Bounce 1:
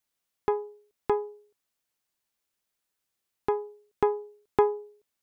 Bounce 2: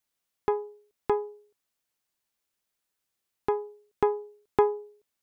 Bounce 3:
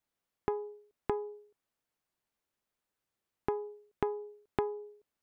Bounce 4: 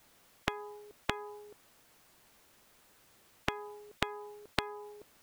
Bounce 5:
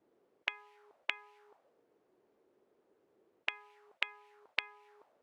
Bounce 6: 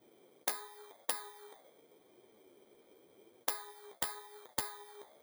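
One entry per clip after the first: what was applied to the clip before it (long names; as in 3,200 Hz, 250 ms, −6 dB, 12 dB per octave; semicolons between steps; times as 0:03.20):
no processing that can be heard
high-shelf EQ 2,300 Hz −10.5 dB; downward compressor 6 to 1, threshold −31 dBFS, peak gain reduction 13.5 dB; level +1.5 dB
every bin compressed towards the loudest bin 4 to 1; level +6.5 dB
envelope filter 320–2,400 Hz, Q 3.3, up, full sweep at −41.5 dBFS; level +5.5 dB
samples in bit-reversed order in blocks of 16 samples; wrap-around overflow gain 26 dB; flanger 0.89 Hz, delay 7.7 ms, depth 7.6 ms, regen +34%; level +13 dB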